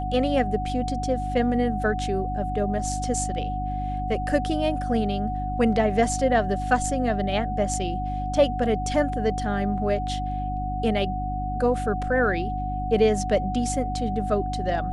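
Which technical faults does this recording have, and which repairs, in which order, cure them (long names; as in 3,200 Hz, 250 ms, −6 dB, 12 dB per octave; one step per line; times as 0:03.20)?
mains hum 50 Hz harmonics 6 −30 dBFS
whistle 740 Hz −29 dBFS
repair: hum removal 50 Hz, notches 6
notch filter 740 Hz, Q 30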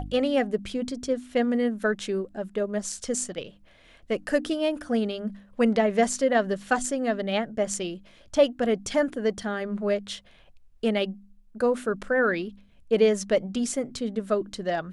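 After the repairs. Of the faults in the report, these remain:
none of them is left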